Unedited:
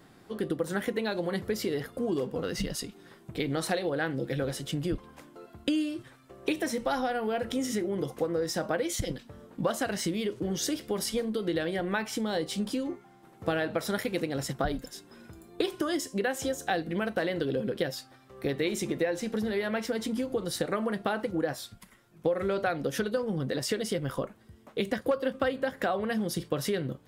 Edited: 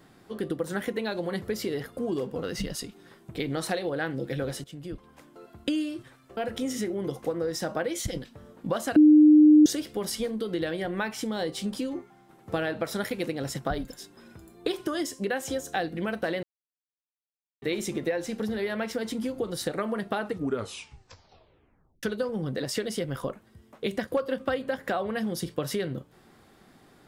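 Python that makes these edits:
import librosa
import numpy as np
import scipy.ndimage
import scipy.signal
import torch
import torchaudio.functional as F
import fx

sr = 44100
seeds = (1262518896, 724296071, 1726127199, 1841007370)

y = fx.edit(x, sr, fx.fade_in_from(start_s=4.64, length_s=0.82, floor_db=-14.5),
    fx.cut(start_s=6.37, length_s=0.94),
    fx.bleep(start_s=9.9, length_s=0.7, hz=303.0, db=-11.5),
    fx.silence(start_s=17.37, length_s=1.19),
    fx.tape_stop(start_s=21.14, length_s=1.83), tone=tone)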